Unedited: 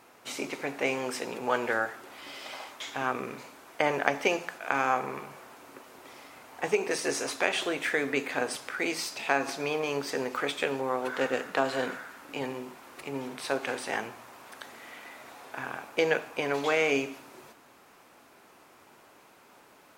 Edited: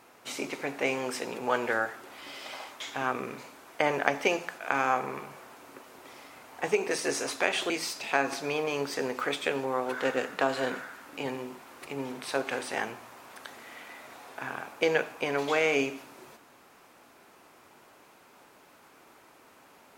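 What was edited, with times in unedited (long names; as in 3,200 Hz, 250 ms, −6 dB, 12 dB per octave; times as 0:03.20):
0:07.70–0:08.86: remove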